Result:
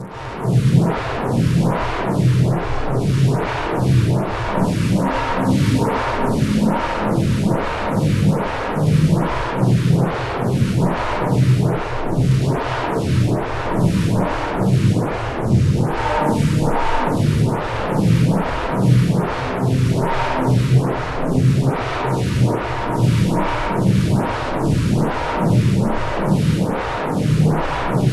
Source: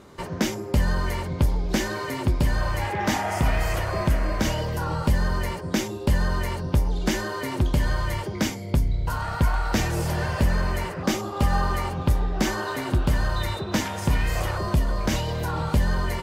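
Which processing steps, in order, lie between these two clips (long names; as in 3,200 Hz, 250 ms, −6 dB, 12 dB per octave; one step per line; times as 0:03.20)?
downward compressor 2.5 to 1, threshold −25 dBFS, peak gain reduction 7 dB
phase-vocoder pitch shift with formants kept −10 semitones
transient designer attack −2 dB, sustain +7 dB
bit-depth reduction 8 bits, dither none
parametric band 330 Hz +15 dB 1.7 octaves
hollow resonant body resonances 210/1,600 Hz, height 16 dB, ringing for 35 ms
harmonic and percussive parts rebalanced percussive −13 dB
fuzz pedal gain 39 dB, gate −43 dBFS
wrong playback speed 78 rpm record played at 45 rpm
convolution reverb RT60 2.6 s, pre-delay 102 ms, DRR −8.5 dB
phaser with staggered stages 1.2 Hz
level −9 dB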